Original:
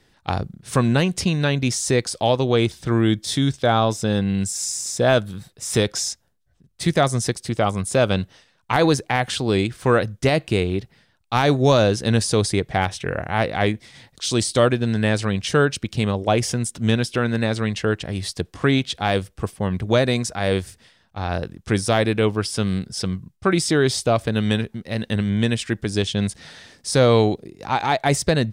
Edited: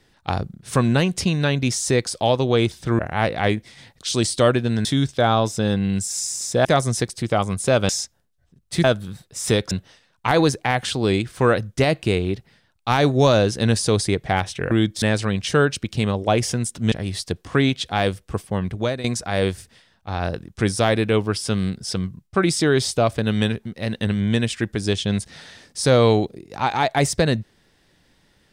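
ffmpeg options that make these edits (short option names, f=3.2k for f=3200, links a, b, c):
-filter_complex "[0:a]asplit=11[a][b][c][d][e][f][g][h][i][j][k];[a]atrim=end=2.992[l];[b]atrim=start=13.158:end=15.022[m];[c]atrim=start=3.298:end=5.102[n];[d]atrim=start=6.918:end=8.162[o];[e]atrim=start=5.968:end=6.922[p];[f]atrim=start=5.098:end=5.972[q];[g]atrim=start=8.158:end=13.162[r];[h]atrim=start=2.988:end=3.302[s];[i]atrim=start=15.018:end=16.922[t];[j]atrim=start=18.008:end=20.13,asetpts=PTS-STARTPTS,afade=t=out:st=1.502:d=0.62:c=qsin:silence=0.199526[u];[k]atrim=start=20.13,asetpts=PTS-STARTPTS,afade=t=in:d=0.004:c=hsin:silence=0.199526[v];[l][m]acrossfade=d=0.004:c1=hsin:c2=hsin[w];[w][n]acrossfade=d=0.004:c1=hsin:c2=hsin[x];[x][o]acrossfade=d=0.004:c1=hsin:c2=hsin[y];[y][p]acrossfade=d=0.004:c1=hsin:c2=hsin[z];[z][q]acrossfade=d=0.004:c1=hsin:c2=hsin[aa];[aa][r]acrossfade=d=0.004:c1=hsin:c2=hsin[ab];[ab][s]acrossfade=d=0.004:c1=hsin:c2=hsin[ac];[ac][t]acrossfade=d=0.004:c1=hsin:c2=hsin[ad];[u][v]concat=n=2:v=0:a=1[ae];[ad][ae]acrossfade=d=0.004:c1=hsin:c2=hsin"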